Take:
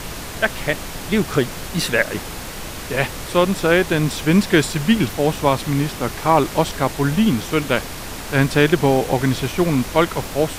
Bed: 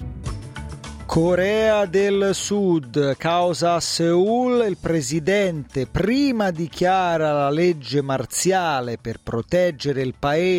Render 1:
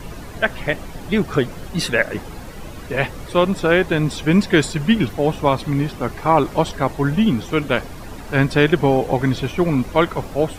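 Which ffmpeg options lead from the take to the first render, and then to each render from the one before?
-af "afftdn=nr=12:nf=-31"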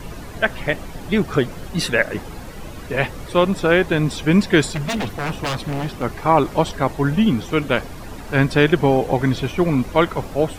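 -filter_complex "[0:a]asettb=1/sr,asplit=3[a][b][c];[a]atrim=end=4.674[d];[b]atrim=start=4.67:end=6.03,asetpts=PTS-STARTPTS,afade=t=in:d=0.004:c=qsin,afade=t=out:st=1.356:d=0.004:c=qsin,aeval=exprs='0.133*(abs(mod(val(0)/0.133+3,4)-2)-1)':c=same[e];[c]atrim=start=6.026[f];[d][e]acrossfade=d=0.004:c1=hsin:c2=qsin[g];[g][f]acrossfade=d=0.004:c1=qsin:c2=hsin"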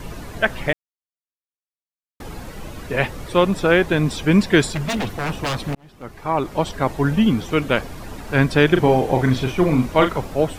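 -filter_complex "[0:a]asettb=1/sr,asplit=3[a][b][c];[a]atrim=end=8.684[d];[b]atrim=start=8.68:end=10.18,asetpts=PTS-STARTPTS,afade=t=in:d=0.004:c=qsin,afade=t=out:st=1.496:d=0.004:c=qsin,asplit=2[e][f];[f]adelay=39,volume=-6.5dB[g];[e][g]amix=inputs=2:normalize=0,atrim=end_sample=66150[h];[c]atrim=start=10.176[i];[d][h]acrossfade=d=0.004:c1=hsin:c2=qsin[j];[j][i]acrossfade=d=0.004:c1=qsin:c2=hsin,asplit=4[k][l][m][n];[k]atrim=end=0.73,asetpts=PTS-STARTPTS,afade=t=out:st=0.726:d=0.004:c=hsin[o];[l]atrim=start=0.73:end=2.2,asetpts=PTS-STARTPTS,volume=0[p];[m]atrim=start=2.2:end=5.75,asetpts=PTS-STARTPTS,afade=t=in:d=0.004:c=hsin,afade=t=out:st=3.546:d=0.004:c=hsin[q];[n]atrim=start=5.75,asetpts=PTS-STARTPTS,afade=t=in:d=1.2[r];[o][p][q][r]concat=n=4:v=0:a=1"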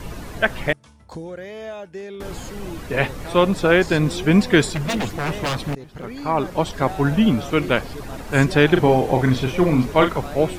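-filter_complex "[1:a]volume=-15.5dB[a];[0:a][a]amix=inputs=2:normalize=0"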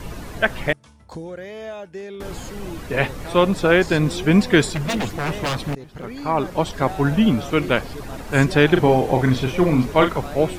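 -af anull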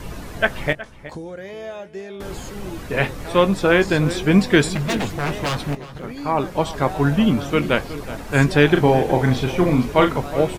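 -filter_complex "[0:a]asplit=2[a][b];[b]adelay=21,volume=-12.5dB[c];[a][c]amix=inputs=2:normalize=0,asplit=2[d][e];[e]adelay=367.3,volume=-15dB,highshelf=f=4k:g=-8.27[f];[d][f]amix=inputs=2:normalize=0"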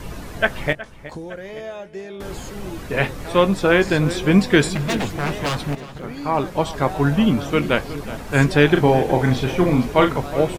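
-af "aecho=1:1:877:0.0891"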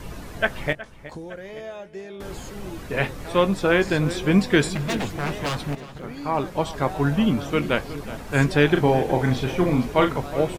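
-af "volume=-3.5dB"

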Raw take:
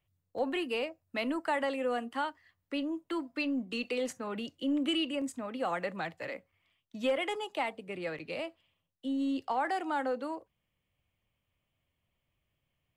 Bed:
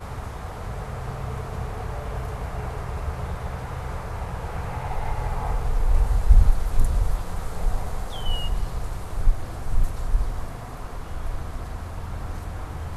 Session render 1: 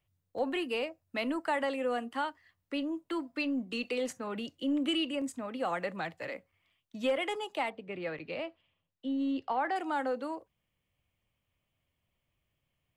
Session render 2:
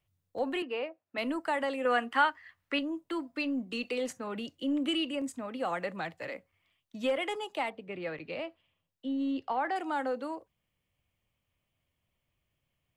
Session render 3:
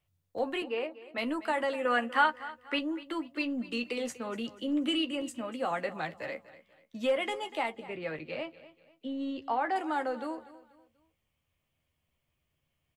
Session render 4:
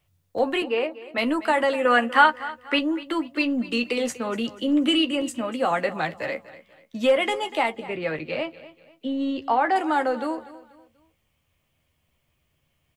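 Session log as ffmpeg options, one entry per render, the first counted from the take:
-filter_complex "[0:a]asettb=1/sr,asplit=3[a][b][c];[a]atrim=end=7.704[d];[b]atrim=start=7.7:end=9.76,asetpts=PTS-STARTPTS,afade=t=in:d=0.004:c=qsin,afade=t=out:st=2.056:d=0.004:c=qsin,lowpass=3.8k[e];[c]atrim=start=9.756[f];[d][e]acrossfade=d=0.004:c1=hsin:c2=qsin[g];[g][f]acrossfade=d=0.004:c1=qsin:c2=hsin"
-filter_complex "[0:a]asettb=1/sr,asplit=3[a][b][c];[a]atrim=end=0.624[d];[b]atrim=start=0.62:end=1.18,asetpts=PTS-STARTPTS,afade=t=in:d=0.004:c=qsin,afade=t=out:st=0.556:d=0.004:c=qsin,highpass=300,lowpass=2.5k[e];[c]atrim=start=1.176[f];[d][e]acrossfade=d=0.004:c1=hsin:c2=qsin[g];[g][f]acrossfade=d=0.004:c1=qsin:c2=hsin,asettb=1/sr,asplit=3[h][i][j];[h]atrim=end=1.854[k];[i]atrim=start=1.85:end=2.79,asetpts=PTS-STARTPTS,afade=t=in:d=0.004:c=qsin,afade=t=out:st=0.936:d=0.004:c=qsin,equalizer=f=1.7k:w=0.6:g=12[l];[j]atrim=start=2.786[m];[k][l]acrossfade=d=0.004:c1=hsin:c2=qsin[n];[n][m]acrossfade=d=0.004:c1=qsin:c2=hsin"
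-filter_complex "[0:a]asplit=2[a][b];[b]adelay=13,volume=-8dB[c];[a][c]amix=inputs=2:normalize=0,aecho=1:1:243|486|729:0.141|0.0494|0.0173"
-af "volume=9dB"

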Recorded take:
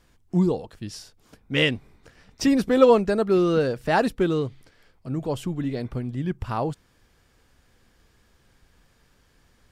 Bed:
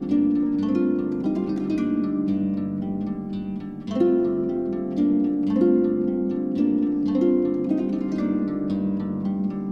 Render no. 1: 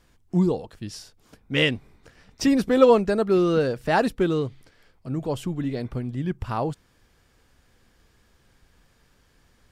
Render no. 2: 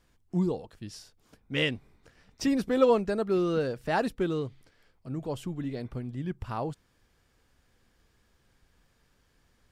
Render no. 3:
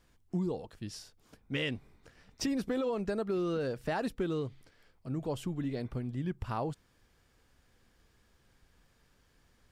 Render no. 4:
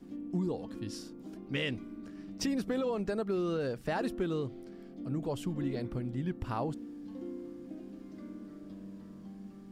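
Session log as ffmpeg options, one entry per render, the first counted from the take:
-af anull
-af "volume=-6.5dB"
-af "alimiter=limit=-20dB:level=0:latency=1:release=56,acompressor=threshold=-29dB:ratio=6"
-filter_complex "[1:a]volume=-22dB[a];[0:a][a]amix=inputs=2:normalize=0"

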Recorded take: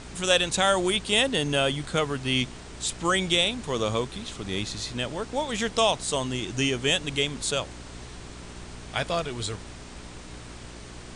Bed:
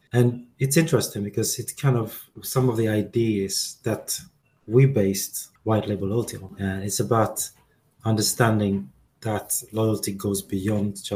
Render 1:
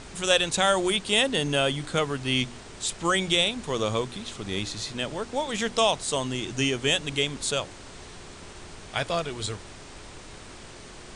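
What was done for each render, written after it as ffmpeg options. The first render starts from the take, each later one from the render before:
-af "bandreject=f=60:t=h:w=4,bandreject=f=120:t=h:w=4,bandreject=f=180:t=h:w=4,bandreject=f=240:t=h:w=4,bandreject=f=300:t=h:w=4"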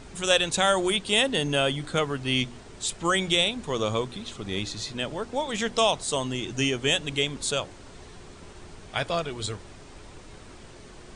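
-af "afftdn=nr=6:nf=-44"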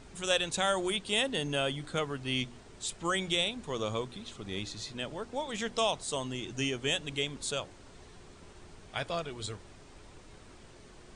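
-af "volume=-7dB"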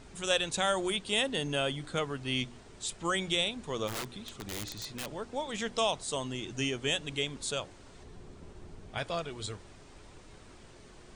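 -filter_complex "[0:a]asplit=3[a][b][c];[a]afade=t=out:st=3.87:d=0.02[d];[b]aeval=exprs='(mod(35.5*val(0)+1,2)-1)/35.5':c=same,afade=t=in:st=3.87:d=0.02,afade=t=out:st=5.13:d=0.02[e];[c]afade=t=in:st=5.13:d=0.02[f];[d][e][f]amix=inputs=3:normalize=0,asettb=1/sr,asplit=3[g][h][i];[g]atrim=end=8.034[j];[h]atrim=start=8.03:end=8.98,asetpts=PTS-STARTPTS,afade=t=in:d=0.004:c=qsin,afade=t=out:st=0.946:d=0.004:c=qsin,tiltshelf=f=720:g=5[k];[i]atrim=start=8.976[l];[j][k]acrossfade=d=0.004:c1=hsin:c2=qsin[m];[m][l]acrossfade=d=0.004:c1=qsin:c2=hsin"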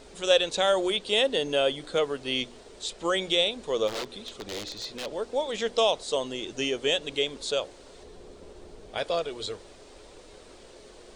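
-filter_complex "[0:a]acrossover=split=6900[a][b];[b]acompressor=threshold=-59dB:ratio=4:attack=1:release=60[c];[a][c]amix=inputs=2:normalize=0,equalizer=f=125:t=o:w=1:g=-9,equalizer=f=500:t=o:w=1:g=11,equalizer=f=4k:t=o:w=1:g=6,equalizer=f=16k:t=o:w=1:g=9"

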